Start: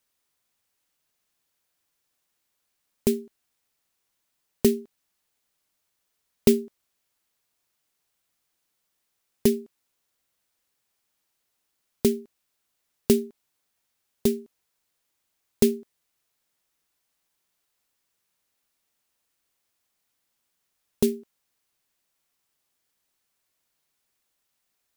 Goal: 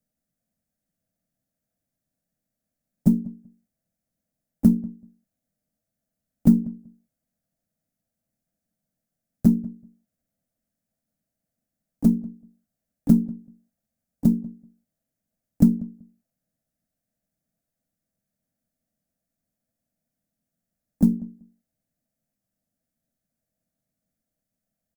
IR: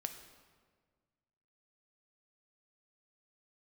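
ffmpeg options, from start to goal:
-filter_complex "[0:a]firequalizer=gain_entry='entry(110,0);entry(220,8);entry(440,-23);entry(640,2);entry(940,-30);entry(1600,-14);entry(2900,-25);entry(6400,-16);entry(14000,-14)':delay=0.05:min_phase=1,asplit=2[link_01][link_02];[link_02]acompressor=threshold=-25dB:ratio=6,volume=1dB[link_03];[link_01][link_03]amix=inputs=2:normalize=0,aeval=exprs='0.668*(cos(1*acos(clip(val(0)/0.668,-1,1)))-cos(1*PI/2))+0.00841*(cos(8*acos(clip(val(0)/0.668,-1,1)))-cos(8*PI/2))':channel_layout=same,asplit=3[link_04][link_05][link_06];[link_05]asetrate=35002,aresample=44100,atempo=1.25992,volume=-5dB[link_07];[link_06]asetrate=55563,aresample=44100,atempo=0.793701,volume=-14dB[link_08];[link_04][link_07][link_08]amix=inputs=3:normalize=0,acrossover=split=350|3000[link_09][link_10][link_11];[link_10]acompressor=threshold=-28dB:ratio=6[link_12];[link_09][link_12][link_11]amix=inputs=3:normalize=0,asplit=2[link_13][link_14];[link_14]adelay=191,lowpass=frequency=890:poles=1,volume=-19.5dB,asplit=2[link_15][link_16];[link_16]adelay=191,lowpass=frequency=890:poles=1,volume=0.16[link_17];[link_15][link_17]amix=inputs=2:normalize=0[link_18];[link_13][link_18]amix=inputs=2:normalize=0,volume=-2.5dB"

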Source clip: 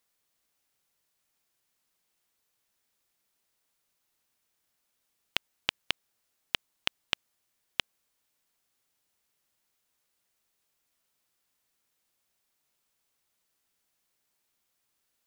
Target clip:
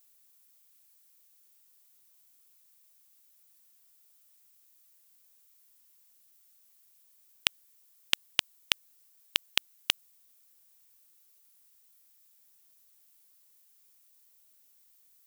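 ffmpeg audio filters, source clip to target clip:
ffmpeg -i in.wav -af "areverse,aemphasis=mode=production:type=75kf,volume=-1.5dB" out.wav

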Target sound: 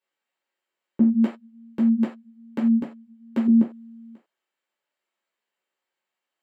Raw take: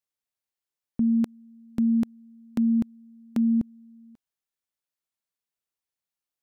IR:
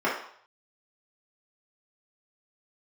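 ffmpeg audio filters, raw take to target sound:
-filter_complex "[0:a]asettb=1/sr,asplit=3[link_01][link_02][link_03];[link_01]atrim=end=1.034[link_04];[link_02]atrim=start=1.03:end=3.48,asetpts=PTS-STARTPTS,afade=type=in:duration=0.004:curve=qsin,afade=type=out:start_time=2.446:duration=0.004:curve=qsin,flanger=delay=4.9:depth=7:regen=-30:speed=1.2:shape=triangular[link_05];[link_03]atrim=start=3.476[link_06];[link_04][link_05]acrossfade=duration=0.004:curve1=hsin:curve2=qsin[link_07];[link_07][link_06]acrossfade=duration=0.004:curve1=qsin:curve2=hsin[link_08];[1:a]atrim=start_sample=2205,atrim=end_sample=6615,asetrate=61740,aresample=44100[link_09];[link_08][link_09]afir=irnorm=-1:irlink=0"

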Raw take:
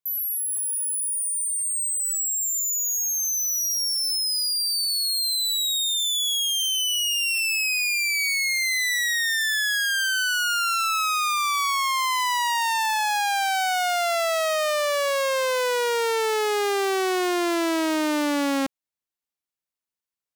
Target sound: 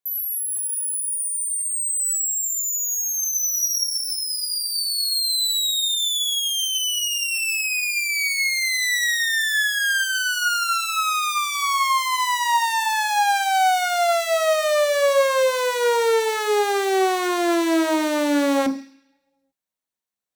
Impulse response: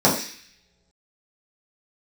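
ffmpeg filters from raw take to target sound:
-filter_complex "[0:a]asplit=2[link_01][link_02];[1:a]atrim=start_sample=2205,lowshelf=frequency=440:gain=-6.5[link_03];[link_02][link_03]afir=irnorm=-1:irlink=0,volume=-22dB[link_04];[link_01][link_04]amix=inputs=2:normalize=0"

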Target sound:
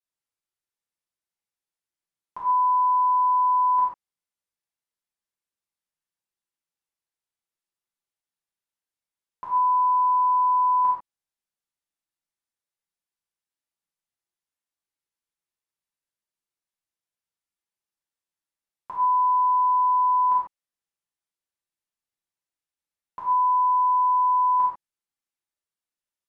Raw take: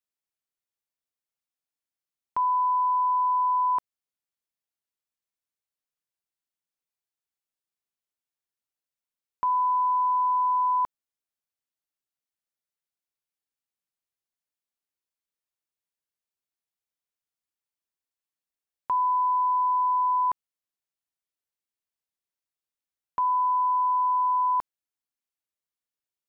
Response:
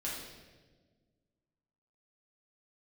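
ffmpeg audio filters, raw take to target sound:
-filter_complex "[1:a]atrim=start_sample=2205,atrim=end_sample=3969,asetrate=25578,aresample=44100[link_01];[0:a][link_01]afir=irnorm=-1:irlink=0,volume=-5dB"

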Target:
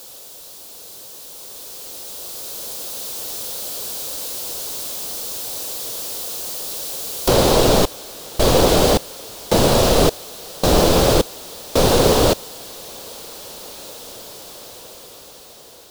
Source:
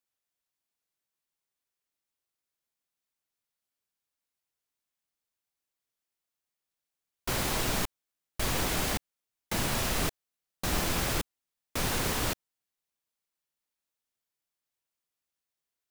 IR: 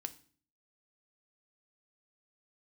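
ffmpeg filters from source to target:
-af "aeval=exprs='val(0)+0.5*0.0126*sgn(val(0))':channel_layout=same,asetnsamples=nb_out_samples=441:pad=0,asendcmd='7.28 highshelf g -5.5',highshelf=frequency=4600:gain=5,dynaudnorm=framelen=660:gausssize=7:maxgain=11dB,equalizer=frequency=500:width_type=o:width=1:gain=11,equalizer=frequency=2000:width_type=o:width=1:gain=-10,equalizer=frequency=4000:width_type=o:width=1:gain=5,volume=2dB"

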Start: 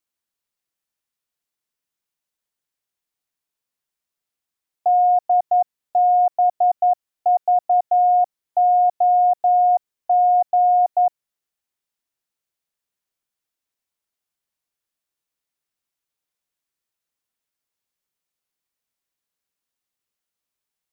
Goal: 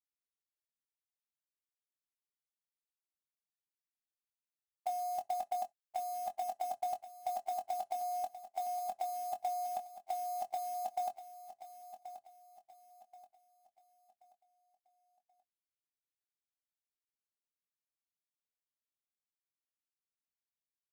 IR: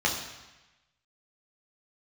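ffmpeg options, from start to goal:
-filter_complex "[0:a]agate=range=-20dB:threshold=-19dB:ratio=16:detection=peak,equalizer=frequency=560:width_type=o:width=1.2:gain=-10.5,bandreject=frequency=710:width=12,alimiter=level_in=2.5dB:limit=-24dB:level=0:latency=1:release=96,volume=-2.5dB,acrusher=bits=4:mode=log:mix=0:aa=0.000001,asplit=2[link_01][link_02];[link_02]adelay=23,volume=-8dB[link_03];[link_01][link_03]amix=inputs=2:normalize=0,aecho=1:1:1080|2160|3240|4320:0.237|0.0854|0.0307|0.0111,asplit=2[link_04][link_05];[1:a]atrim=start_sample=2205,afade=type=out:start_time=0.15:duration=0.01,atrim=end_sample=7056,asetrate=66150,aresample=44100[link_06];[link_05][link_06]afir=irnorm=-1:irlink=0,volume=-27dB[link_07];[link_04][link_07]amix=inputs=2:normalize=0"

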